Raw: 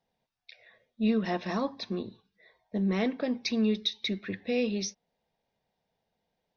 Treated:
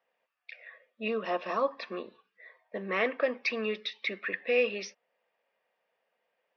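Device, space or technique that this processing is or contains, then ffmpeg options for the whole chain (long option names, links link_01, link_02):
phone earpiece: -filter_complex "[0:a]highpass=500,equalizer=frequency=530:width_type=q:width=4:gain=7,equalizer=frequency=820:width_type=q:width=4:gain=-4,equalizer=frequency=1200:width_type=q:width=4:gain=10,equalizer=frequency=1800:width_type=q:width=4:gain=7,equalizer=frequency=2600:width_type=q:width=4:gain=7,equalizer=frequency=3900:width_type=q:width=4:gain=-10,lowpass=frequency=4400:width=0.5412,lowpass=frequency=4400:width=1.3066,asettb=1/sr,asplit=3[link_01][link_02][link_03];[link_01]atrim=end=1.084[link_04];[link_02]atrim=start=1.08:end=1.71,asetpts=PTS-STARTPTS,afade=type=in:duration=0.004:curve=qsin,afade=type=out:start_time=0.626:duration=0.004:curve=qsin,equalizer=frequency=1900:width=1.9:gain=-12[link_05];[link_03]atrim=start=1.706[link_06];[link_04][link_05]acrossfade=duration=0.004:curve1=hsin:curve2=qsin[link_07];[link_07][link_06]acrossfade=duration=0.004:curve1=qsin:curve2=hsin,volume=2dB"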